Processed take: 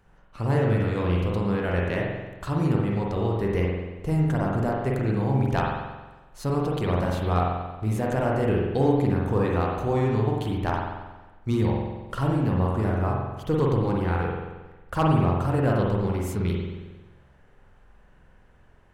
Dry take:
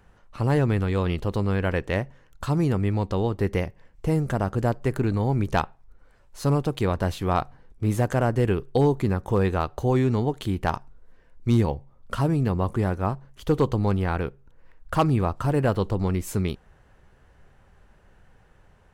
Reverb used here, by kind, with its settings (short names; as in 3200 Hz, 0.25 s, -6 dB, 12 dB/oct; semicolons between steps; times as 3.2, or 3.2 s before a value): spring tank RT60 1.2 s, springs 45 ms, chirp 70 ms, DRR -2.5 dB; gain -4.5 dB